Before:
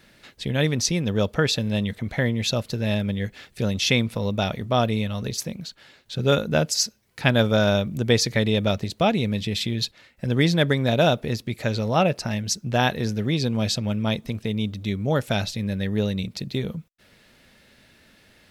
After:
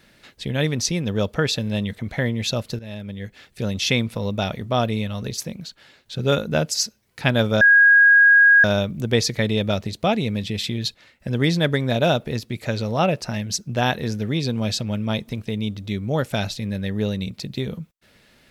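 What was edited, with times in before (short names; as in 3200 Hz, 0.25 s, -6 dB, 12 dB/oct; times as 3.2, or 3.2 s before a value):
2.79–3.79 fade in, from -14.5 dB
7.61 add tone 1640 Hz -9 dBFS 1.03 s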